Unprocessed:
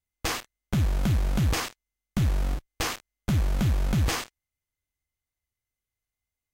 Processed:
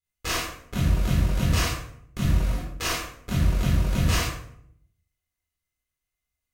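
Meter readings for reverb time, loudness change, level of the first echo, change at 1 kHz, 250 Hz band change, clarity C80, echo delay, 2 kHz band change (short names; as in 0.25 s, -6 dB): 0.65 s, +2.0 dB, none, +2.0 dB, +1.5 dB, 5.0 dB, none, +3.5 dB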